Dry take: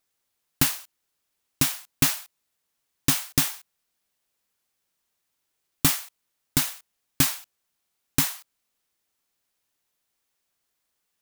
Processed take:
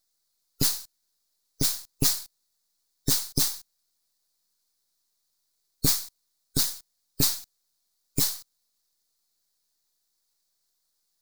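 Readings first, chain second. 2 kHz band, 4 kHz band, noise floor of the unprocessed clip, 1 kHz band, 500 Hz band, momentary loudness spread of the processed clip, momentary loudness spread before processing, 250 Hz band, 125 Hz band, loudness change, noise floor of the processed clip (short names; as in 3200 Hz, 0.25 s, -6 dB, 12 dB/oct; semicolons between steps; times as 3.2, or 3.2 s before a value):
-11.0 dB, +0.5 dB, -78 dBFS, -8.5 dB, +1.0 dB, 11 LU, 13 LU, -4.0 dB, -2.5 dB, -1.5 dB, -76 dBFS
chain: spectral gate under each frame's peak -15 dB strong; half-wave rectifier; resonant high shelf 3500 Hz +6.5 dB, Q 3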